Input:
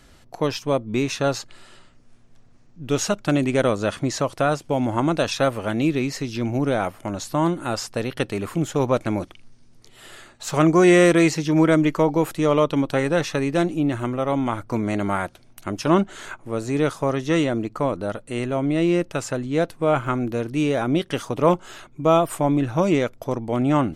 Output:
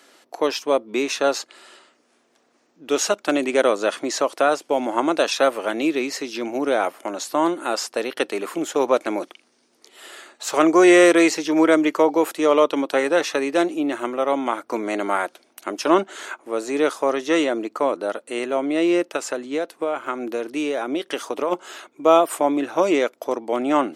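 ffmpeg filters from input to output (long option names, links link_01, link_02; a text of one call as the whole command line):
ffmpeg -i in.wav -filter_complex "[0:a]highpass=frequency=310:width=0.5412,highpass=frequency=310:width=1.3066,asplit=3[link_01][link_02][link_03];[link_01]afade=type=out:start_time=19.16:duration=0.02[link_04];[link_02]acompressor=threshold=-24dB:ratio=5,afade=type=in:start_time=19.16:duration=0.02,afade=type=out:start_time=21.51:duration=0.02[link_05];[link_03]afade=type=in:start_time=21.51:duration=0.02[link_06];[link_04][link_05][link_06]amix=inputs=3:normalize=0,volume=3dB" out.wav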